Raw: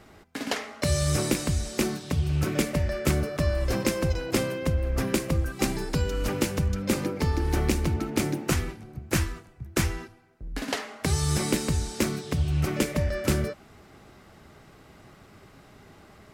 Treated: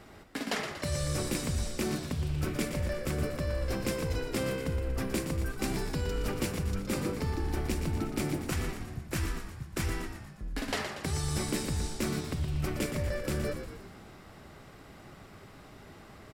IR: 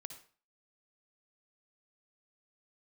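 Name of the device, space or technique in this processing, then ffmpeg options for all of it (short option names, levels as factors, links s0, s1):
compression on the reversed sound: -filter_complex "[0:a]bandreject=f=6400:w=17,areverse,acompressor=threshold=0.0355:ratio=6,areverse,asplit=8[s0][s1][s2][s3][s4][s5][s6][s7];[s1]adelay=118,afreqshift=-63,volume=0.398[s8];[s2]adelay=236,afreqshift=-126,volume=0.219[s9];[s3]adelay=354,afreqshift=-189,volume=0.12[s10];[s4]adelay=472,afreqshift=-252,volume=0.0661[s11];[s5]adelay=590,afreqshift=-315,volume=0.0363[s12];[s6]adelay=708,afreqshift=-378,volume=0.02[s13];[s7]adelay=826,afreqshift=-441,volume=0.011[s14];[s0][s8][s9][s10][s11][s12][s13][s14]amix=inputs=8:normalize=0"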